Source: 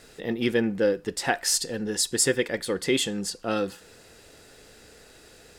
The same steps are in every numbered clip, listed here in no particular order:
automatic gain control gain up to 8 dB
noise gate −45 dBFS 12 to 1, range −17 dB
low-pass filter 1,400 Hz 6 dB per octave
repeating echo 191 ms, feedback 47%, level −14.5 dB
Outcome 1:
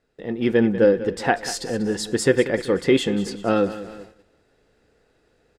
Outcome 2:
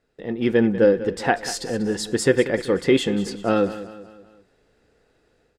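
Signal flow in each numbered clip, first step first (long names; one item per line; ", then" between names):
repeating echo, then noise gate, then low-pass filter, then automatic gain control
noise gate, then low-pass filter, then automatic gain control, then repeating echo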